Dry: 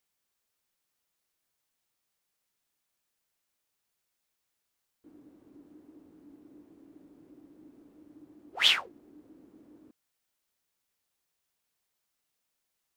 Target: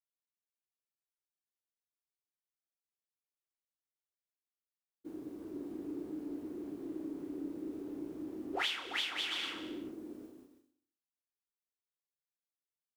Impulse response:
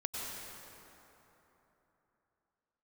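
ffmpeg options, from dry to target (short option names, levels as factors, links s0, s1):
-filter_complex "[0:a]asplit=2[s0][s1];[s1]aecho=0:1:340|544|666.4|739.8|783.9:0.631|0.398|0.251|0.158|0.1[s2];[s0][s2]amix=inputs=2:normalize=0,agate=range=0.0224:threshold=0.00126:ratio=3:detection=peak,equalizer=f=380:w=2.8:g=7.5,asplit=2[s3][s4];[s4]aecho=0:1:63|126|189|252|315|378:0.178|0.103|0.0598|0.0347|0.0201|0.0117[s5];[s3][s5]amix=inputs=2:normalize=0,acompressor=threshold=0.00891:ratio=8,asplit=2[s6][s7];[s7]adelay=32,volume=0.473[s8];[s6][s8]amix=inputs=2:normalize=0,volume=2.11"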